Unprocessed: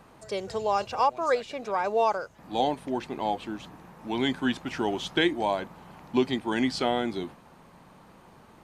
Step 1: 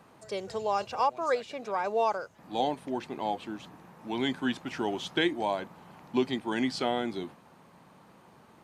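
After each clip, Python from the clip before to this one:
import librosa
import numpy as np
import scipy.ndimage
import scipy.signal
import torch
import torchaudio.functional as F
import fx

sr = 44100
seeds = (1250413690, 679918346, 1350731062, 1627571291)

y = scipy.signal.sosfilt(scipy.signal.butter(2, 92.0, 'highpass', fs=sr, output='sos'), x)
y = y * 10.0 ** (-3.0 / 20.0)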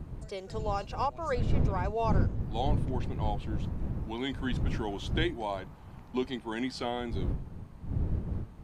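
y = fx.dmg_wind(x, sr, seeds[0], corner_hz=120.0, level_db=-28.0)
y = y * 10.0 ** (-4.5 / 20.0)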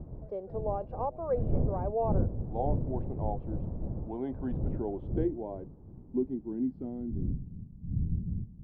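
y = fx.filter_sweep_lowpass(x, sr, from_hz=610.0, to_hz=190.0, start_s=4.41, end_s=7.84, q=1.8)
y = y * 10.0 ** (-2.0 / 20.0)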